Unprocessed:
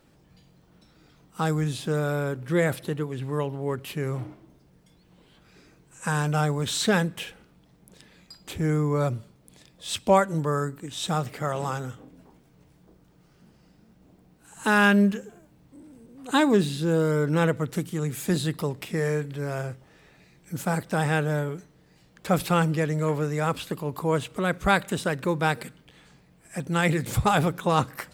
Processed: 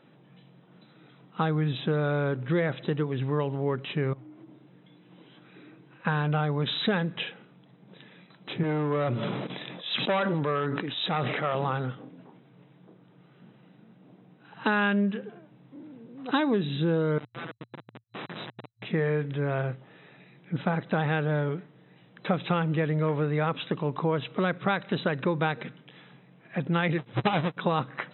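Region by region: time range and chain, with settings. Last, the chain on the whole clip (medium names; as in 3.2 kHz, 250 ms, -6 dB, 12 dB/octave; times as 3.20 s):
4.13–6.05 s: peaking EQ 310 Hz +9.5 dB 0.2 oct + compression 10:1, threshold -47 dBFS + tape noise reduction on one side only encoder only
8.63–11.55 s: hard clipper -21 dBFS + high-pass 310 Hz 6 dB/octave + decay stretcher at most 24 dB/s
17.18–18.85 s: high-pass 1.5 kHz + Schmitt trigger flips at -32.5 dBFS
26.98–27.57 s: square wave that keeps the level + upward expansion 2.5:1, over -32 dBFS
whole clip: compression 6:1, threshold -25 dBFS; FFT band-pass 110–4000 Hz; trim +3 dB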